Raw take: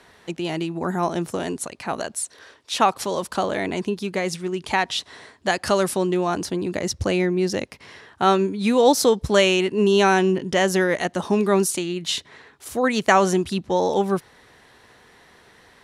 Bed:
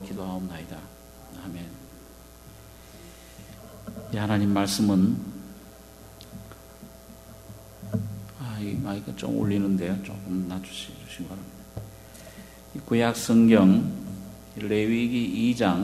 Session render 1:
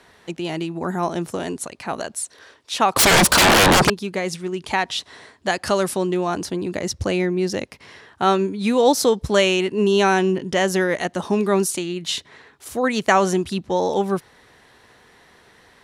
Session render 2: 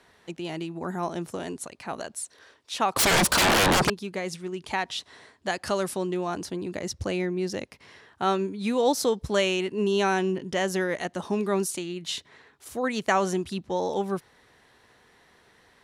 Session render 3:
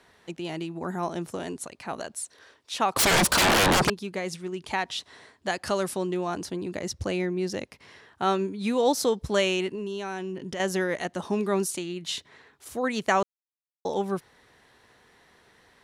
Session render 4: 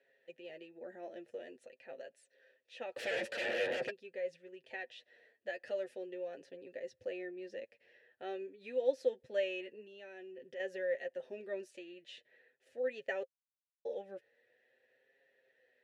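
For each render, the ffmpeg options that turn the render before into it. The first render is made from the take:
-filter_complex "[0:a]asettb=1/sr,asplit=3[s0][s1][s2];[s0]atrim=end=2.964[s3];[s1]atrim=start=2.96:end=3.9,asetpts=PTS-STARTPTS,afade=t=in:d=0.004:c=qsin,afade=t=out:st=0.936:d=0.004:c=qsin,aeval=exprs='0.316*sin(PI/2*10*val(0)/0.316)':c=same[s4];[s2]atrim=start=3.896[s5];[s3][s4]acrossfade=d=0.004:c1=hsin:c2=qsin[s6];[s6][s5]acrossfade=d=0.004:c1=qsin:c2=hsin"
-af "volume=0.447"
-filter_complex "[0:a]asettb=1/sr,asplit=3[s0][s1][s2];[s0]atrim=end=9.754[s3];[s1]atrim=start=9.75:end=10.6,asetpts=PTS-STARTPTS,afade=t=in:d=0.004:c=qsin,afade=t=out:st=0.846:d=0.004:c=qsin,acompressor=threshold=0.0282:ratio=4:attack=3.2:release=140:knee=1:detection=peak[s4];[s2]atrim=start=10.596[s5];[s3][s4]acrossfade=d=0.004:c1=hsin:c2=qsin[s6];[s6][s5]acrossfade=d=0.004:c1=qsin:c2=hsin,asplit=3[s7][s8][s9];[s7]atrim=end=13.23,asetpts=PTS-STARTPTS,afade=t=out:st=13.226:d=0.004:c=hsin[s10];[s8]atrim=start=13.23:end=13.85,asetpts=PTS-STARTPTS,volume=0[s11];[s9]atrim=start=13.85,asetpts=PTS-STARTPTS,afade=t=in:d=0.004:c=hsin[s12];[s10][s11][s12]concat=n=3:v=0:a=1"
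-filter_complex "[0:a]asplit=3[s0][s1][s2];[s0]bandpass=f=530:t=q:w=8,volume=1[s3];[s1]bandpass=f=1840:t=q:w=8,volume=0.501[s4];[s2]bandpass=f=2480:t=q:w=8,volume=0.355[s5];[s3][s4][s5]amix=inputs=3:normalize=0,flanger=delay=7.2:depth=1.7:regen=22:speed=0.46:shape=triangular"

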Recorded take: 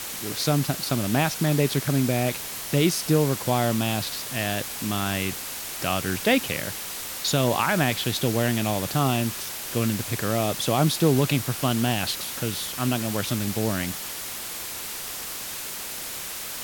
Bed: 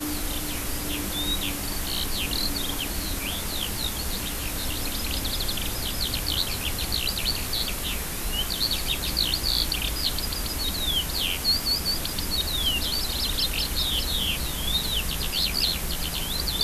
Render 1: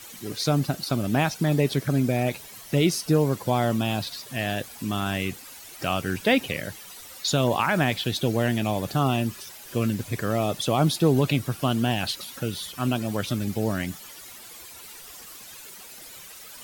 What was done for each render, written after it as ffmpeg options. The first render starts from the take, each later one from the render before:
-af "afftdn=nr=13:nf=-34"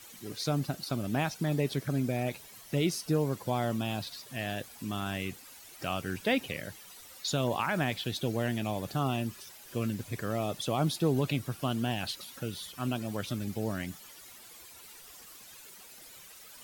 -af "volume=0.422"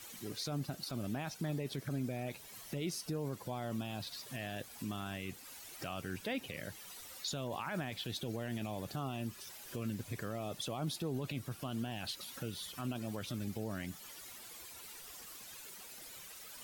-af "acompressor=threshold=0.00708:ratio=1.5,alimiter=level_in=1.78:limit=0.0631:level=0:latency=1:release=13,volume=0.562"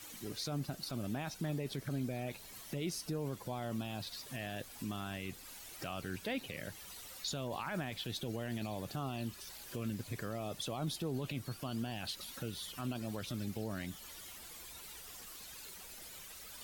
-filter_complex "[1:a]volume=0.0178[s0];[0:a][s0]amix=inputs=2:normalize=0"

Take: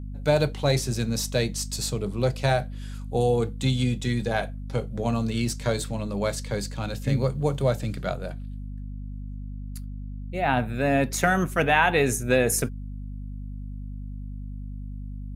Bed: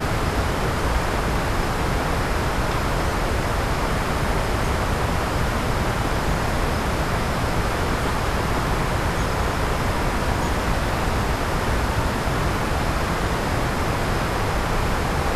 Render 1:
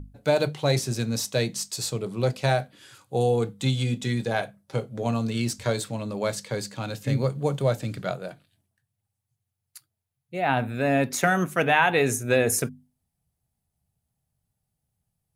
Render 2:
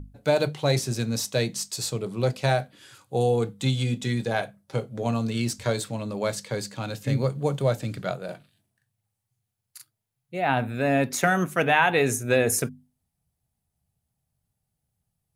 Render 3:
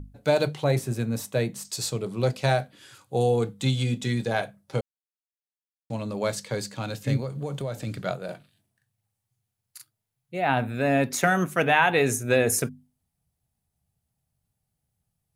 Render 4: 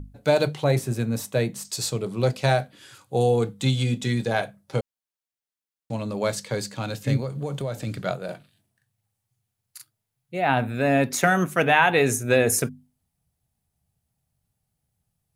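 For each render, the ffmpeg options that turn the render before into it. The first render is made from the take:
-af "bandreject=f=50:t=h:w=6,bandreject=f=100:t=h:w=6,bandreject=f=150:t=h:w=6,bandreject=f=200:t=h:w=6,bandreject=f=250:t=h:w=6"
-filter_complex "[0:a]asettb=1/sr,asplit=3[s0][s1][s2];[s0]atrim=end=8.254[s3];[s1]atrim=start=8.25:end=10.35,asetpts=PTS-STARTPTS,afade=t=in:d=0.004:c=qsin,afade=t=out:st=2.096:d=0.004:c=qsin,asplit=2[s4][s5];[s5]adelay=40,volume=0.794[s6];[s4][s6]amix=inputs=2:normalize=0,atrim=end_sample=92610[s7];[s2]atrim=start=10.346[s8];[s3][s7]acrossfade=d=0.004:c1=hsin:c2=qsin[s9];[s9][s8]acrossfade=d=0.004:c1=qsin:c2=hsin"
-filter_complex "[0:a]asettb=1/sr,asplit=3[s0][s1][s2];[s0]atrim=end=0.644[s3];[s1]atrim=start=0.64:end=1.65,asetpts=PTS-STARTPTS,afade=t=in:d=0.004:c=qsin,afade=t=out:st=1.006:d=0.004:c=qsin,equalizer=f=5100:t=o:w=1.3:g=-12.5[s4];[s2]atrim=start=1.646[s5];[s3][s4]acrossfade=d=0.004:c1=hsin:c2=qsin[s6];[s6][s5]acrossfade=d=0.004:c1=qsin:c2=hsin,asettb=1/sr,asplit=3[s7][s8][s9];[s7]atrim=end=7.174[s10];[s8]atrim=start=7.17:end=7.87,asetpts=PTS-STARTPTS,afade=t=in:d=0.004:c=qsin,afade=t=out:st=0.696:d=0.004:c=qsin,acompressor=threshold=0.0447:ratio=6:attack=3.2:release=140:knee=1:detection=peak[s11];[s9]atrim=start=7.866[s12];[s10][s11]acrossfade=d=0.004:c1=hsin:c2=qsin[s13];[s13][s12]acrossfade=d=0.004:c1=qsin:c2=hsin,asplit=3[s14][s15][s16];[s14]atrim=end=4.81,asetpts=PTS-STARTPTS,afade=t=out:st=4.806:d=0.004:c=hsin[s17];[s15]atrim=start=4.81:end=5.9,asetpts=PTS-STARTPTS,volume=0[s18];[s16]atrim=start=5.9,asetpts=PTS-STARTPTS,afade=t=in:d=0.004:c=hsin[s19];[s17][s18][s19]concat=n=3:v=0:a=1"
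-af "volume=1.26"

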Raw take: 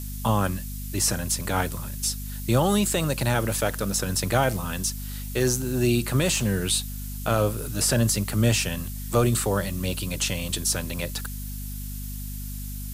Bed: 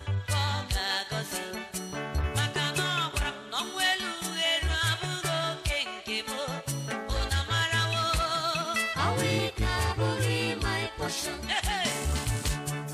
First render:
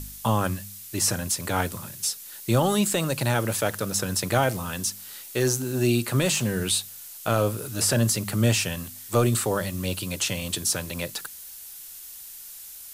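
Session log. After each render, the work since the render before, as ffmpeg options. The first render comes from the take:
-af "bandreject=f=50:t=h:w=4,bandreject=f=100:t=h:w=4,bandreject=f=150:t=h:w=4,bandreject=f=200:t=h:w=4,bandreject=f=250:t=h:w=4"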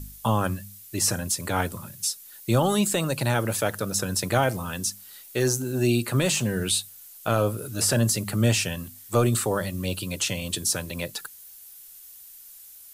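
-af "afftdn=nr=8:nf=-42"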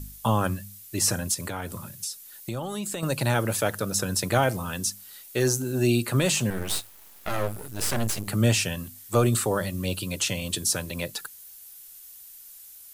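-filter_complex "[0:a]asettb=1/sr,asplit=3[s0][s1][s2];[s0]atrim=end=1.344[s3];[s1]atrim=start=1.34:end=3.03,asetpts=PTS-STARTPTS,afade=t=in:d=0.004:c=qsin,afade=t=out:st=1.686:d=0.004:c=qsin,acompressor=threshold=0.0398:ratio=6:attack=3.2:release=140:knee=1:detection=peak[s4];[s2]atrim=start=3.026[s5];[s3][s4]acrossfade=d=0.004:c1=hsin:c2=qsin[s6];[s6][s5]acrossfade=d=0.004:c1=qsin:c2=hsin,asettb=1/sr,asplit=3[s7][s8][s9];[s7]atrim=end=6.504[s10];[s8]atrim=start=6.5:end=8.28,asetpts=PTS-STARTPTS,afade=t=in:d=0.004:c=qsin,afade=t=out:st=1.776:d=0.004:c=qsin,aeval=exprs='max(val(0),0)':c=same[s11];[s9]atrim=start=8.276[s12];[s10][s11]acrossfade=d=0.004:c1=hsin:c2=qsin[s13];[s13][s12]acrossfade=d=0.004:c1=qsin:c2=hsin"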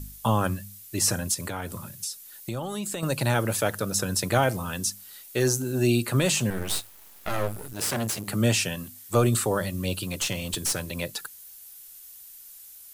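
-filter_complex "[0:a]asettb=1/sr,asplit=3[s0][s1][s2];[s0]atrim=end=7.734[s3];[s1]atrim=start=7.73:end=9.11,asetpts=PTS-STARTPTS,afade=t=in:d=0.004:c=qsin,afade=t=out:st=1.376:d=0.004:c=qsin,highpass=110[s4];[s2]atrim=start=9.106[s5];[s3][s4]acrossfade=d=0.004:c1=hsin:c2=qsin[s6];[s6][s5]acrossfade=d=0.004:c1=qsin:c2=hsin,asettb=1/sr,asplit=3[s7][s8][s9];[s7]atrim=end=10.034[s10];[s8]atrim=start=10.03:end=10.8,asetpts=PTS-STARTPTS,afade=t=in:d=0.004:c=qsin,afade=t=out:st=0.766:d=0.004:c=qsin,aeval=exprs='clip(val(0),-1,0.0473)':c=same[s11];[s9]atrim=start=10.796[s12];[s10][s11]acrossfade=d=0.004:c1=hsin:c2=qsin[s13];[s13][s12]acrossfade=d=0.004:c1=qsin:c2=hsin"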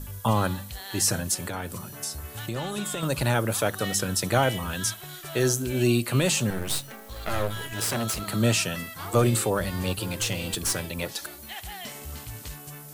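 -filter_complex "[1:a]volume=0.316[s0];[0:a][s0]amix=inputs=2:normalize=0"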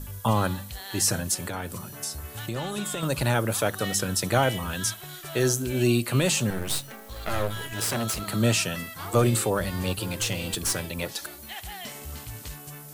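-af anull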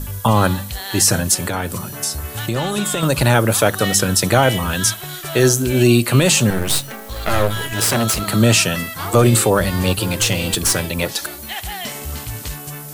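-af "volume=3.35,alimiter=limit=0.708:level=0:latency=1"

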